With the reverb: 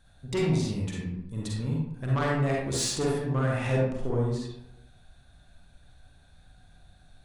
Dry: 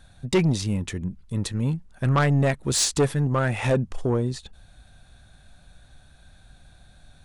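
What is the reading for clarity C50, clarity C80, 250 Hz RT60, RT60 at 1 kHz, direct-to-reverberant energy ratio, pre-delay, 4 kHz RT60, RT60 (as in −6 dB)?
−1.0 dB, 3.5 dB, 0.90 s, 0.80 s, −4.0 dB, 40 ms, 0.45 s, 0.85 s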